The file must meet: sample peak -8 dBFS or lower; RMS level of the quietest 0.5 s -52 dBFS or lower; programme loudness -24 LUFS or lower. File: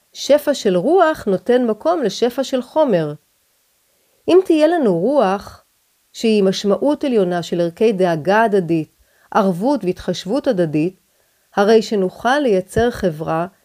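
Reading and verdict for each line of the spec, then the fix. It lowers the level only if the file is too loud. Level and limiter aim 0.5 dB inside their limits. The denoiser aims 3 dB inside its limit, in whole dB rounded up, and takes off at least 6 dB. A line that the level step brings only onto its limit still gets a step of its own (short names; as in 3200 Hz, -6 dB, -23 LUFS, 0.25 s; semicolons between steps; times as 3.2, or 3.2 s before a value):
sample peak -1.5 dBFS: fail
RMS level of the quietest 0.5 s -62 dBFS: OK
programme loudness -17.0 LUFS: fail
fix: gain -7.5 dB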